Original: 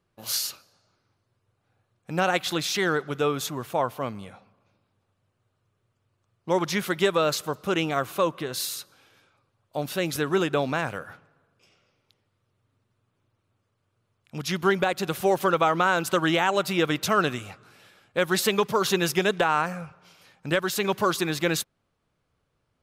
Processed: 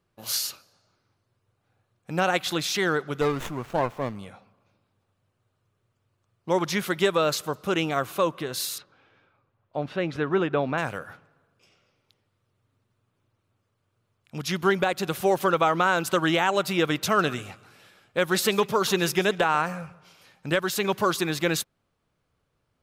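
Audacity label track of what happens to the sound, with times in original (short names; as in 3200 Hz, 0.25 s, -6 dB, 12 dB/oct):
3.210000	4.160000	running maximum over 9 samples
8.780000	10.780000	LPF 2400 Hz
17.050000	20.500000	echo 0.138 s -19 dB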